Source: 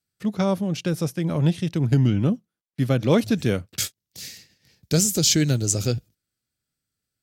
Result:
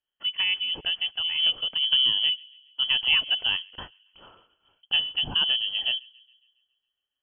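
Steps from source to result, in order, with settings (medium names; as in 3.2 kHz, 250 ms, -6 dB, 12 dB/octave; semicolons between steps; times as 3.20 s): frequency inversion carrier 3.2 kHz; feedback echo behind a high-pass 138 ms, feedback 54%, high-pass 2.5 kHz, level -23 dB; trim -4 dB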